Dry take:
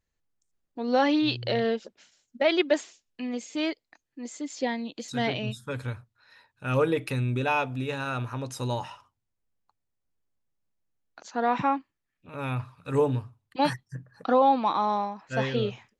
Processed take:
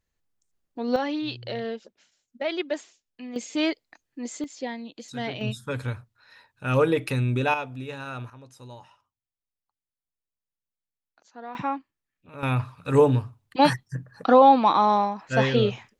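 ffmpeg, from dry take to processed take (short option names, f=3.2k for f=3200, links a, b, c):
-af "asetnsamples=n=441:p=0,asendcmd='0.96 volume volume -5.5dB;3.36 volume volume 4dB;4.44 volume volume -4dB;5.41 volume volume 3dB;7.54 volume volume -4.5dB;8.3 volume volume -14dB;11.55 volume volume -3dB;12.43 volume volume 6dB',volume=1.5dB"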